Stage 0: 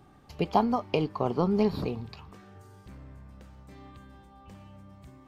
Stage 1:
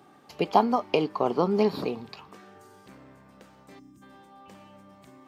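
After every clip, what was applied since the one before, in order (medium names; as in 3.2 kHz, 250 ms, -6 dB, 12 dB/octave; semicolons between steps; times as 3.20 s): high-pass 250 Hz 12 dB/octave; time-frequency box 3.79–4.02 s, 370–4900 Hz -20 dB; trim +4 dB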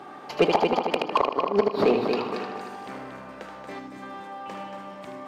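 inverted gate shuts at -14 dBFS, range -26 dB; multi-head delay 77 ms, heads first and third, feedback 52%, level -8 dB; overdrive pedal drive 24 dB, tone 1.4 kHz, clips at -6.5 dBFS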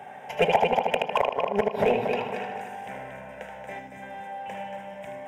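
hard clipper -13.5 dBFS, distortion -21 dB; static phaser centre 1.2 kHz, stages 6; trim +3.5 dB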